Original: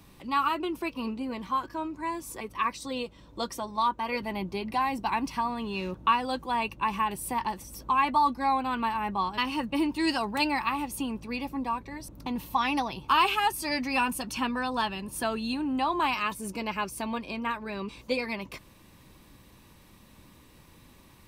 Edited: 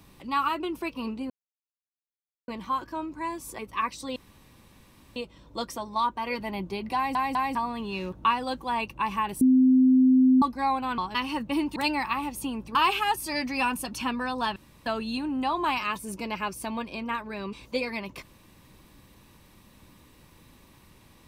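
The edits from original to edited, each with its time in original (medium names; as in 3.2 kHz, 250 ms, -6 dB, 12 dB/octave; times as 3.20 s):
1.30 s: insert silence 1.18 s
2.98 s: insert room tone 1.00 s
4.77 s: stutter in place 0.20 s, 3 plays
7.23–8.24 s: bleep 258 Hz -15 dBFS
8.80–9.21 s: delete
9.99–10.32 s: delete
11.31–13.11 s: delete
14.92–15.22 s: room tone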